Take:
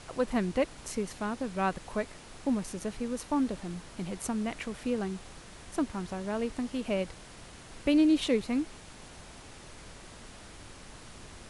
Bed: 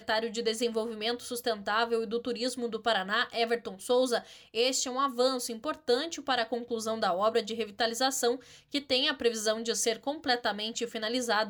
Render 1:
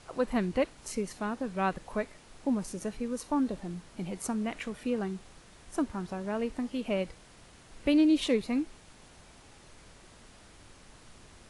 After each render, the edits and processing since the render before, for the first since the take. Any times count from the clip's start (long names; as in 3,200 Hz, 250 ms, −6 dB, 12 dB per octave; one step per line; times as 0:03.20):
noise reduction from a noise print 6 dB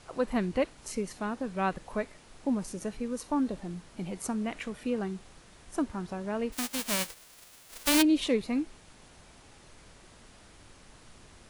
0:06.52–0:08.01: spectral envelope flattened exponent 0.1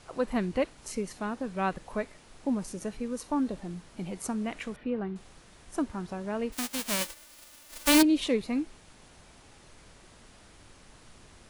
0:04.76–0:05.16: high-frequency loss of the air 360 metres
0:07.01–0:08.03: comb filter 3.4 ms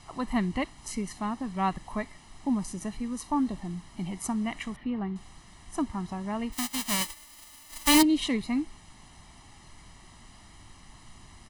comb filter 1 ms, depth 74%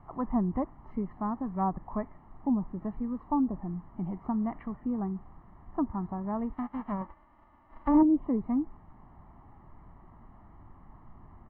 treble cut that deepens with the level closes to 950 Hz, closed at −23 dBFS
low-pass filter 1,300 Hz 24 dB per octave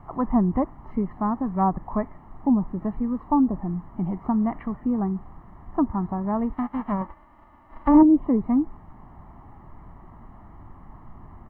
level +7.5 dB